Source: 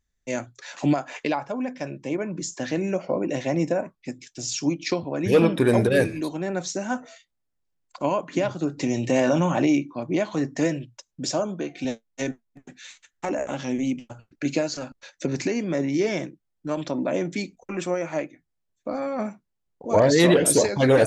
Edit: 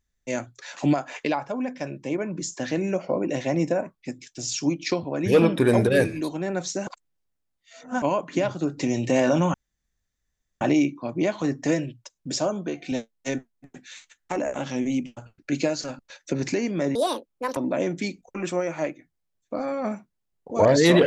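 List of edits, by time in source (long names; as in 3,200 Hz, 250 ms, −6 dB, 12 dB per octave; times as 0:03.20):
0:06.87–0:08.02: reverse
0:09.54: splice in room tone 1.07 s
0:15.88–0:16.91: play speed 167%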